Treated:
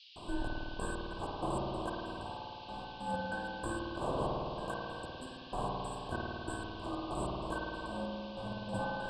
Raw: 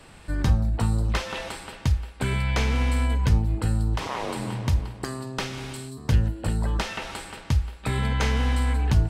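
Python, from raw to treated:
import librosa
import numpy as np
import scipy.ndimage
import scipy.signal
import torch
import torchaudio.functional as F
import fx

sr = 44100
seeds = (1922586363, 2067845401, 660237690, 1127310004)

y = fx.band_shuffle(x, sr, order='2143')
y = scipy.signal.sosfilt(scipy.signal.cheby1(5, 1.0, [1100.0, 7800.0], 'bandstop', fs=sr, output='sos'), y)
y = fx.over_compress(y, sr, threshold_db=-43.0, ratio=-0.5)
y = fx.step_gate(y, sr, bpm=95, pattern='.xx..x.x.x.x', floor_db=-60.0, edge_ms=4.5)
y = fx.dmg_noise_band(y, sr, seeds[0], low_hz=2700.0, high_hz=5000.0, level_db=-61.0)
y = fx.air_absorb(y, sr, metres=120.0)
y = fx.rev_spring(y, sr, rt60_s=2.6, pass_ms=(53,), chirp_ms=75, drr_db=-3.0)
y = y * librosa.db_to_amplitude(6.0)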